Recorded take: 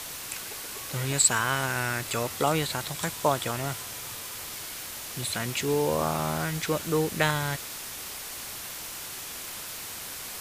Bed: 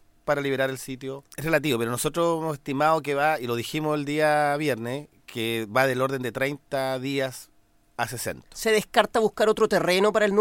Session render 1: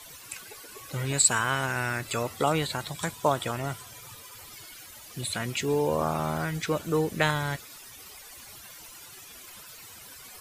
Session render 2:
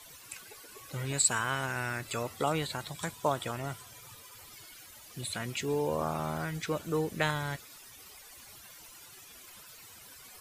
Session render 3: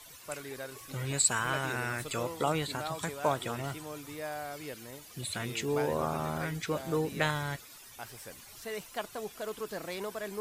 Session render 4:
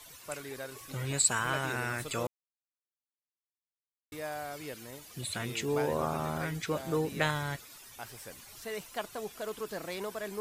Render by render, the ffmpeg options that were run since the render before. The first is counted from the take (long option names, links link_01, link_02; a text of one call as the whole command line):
ffmpeg -i in.wav -af "afftdn=noise_reduction=14:noise_floor=-39" out.wav
ffmpeg -i in.wav -af "volume=-5dB" out.wav
ffmpeg -i in.wav -i bed.wav -filter_complex "[1:a]volume=-17.5dB[link_01];[0:a][link_01]amix=inputs=2:normalize=0" out.wav
ffmpeg -i in.wav -filter_complex "[0:a]asplit=3[link_01][link_02][link_03];[link_01]atrim=end=2.27,asetpts=PTS-STARTPTS,afade=type=out:start_time=2.266:duration=0.004:curve=hsin[link_04];[link_02]atrim=start=2.27:end=4.12,asetpts=PTS-STARTPTS,volume=0[link_05];[link_03]atrim=start=4.12,asetpts=PTS-STARTPTS,afade=type=in:duration=0.004:curve=hsin[link_06];[link_04][link_05][link_06]concat=n=3:v=0:a=1" out.wav